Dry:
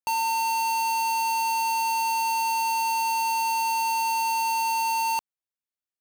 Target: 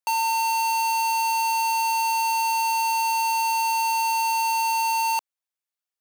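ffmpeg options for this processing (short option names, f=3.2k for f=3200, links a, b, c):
-af "highpass=560,volume=2.5dB"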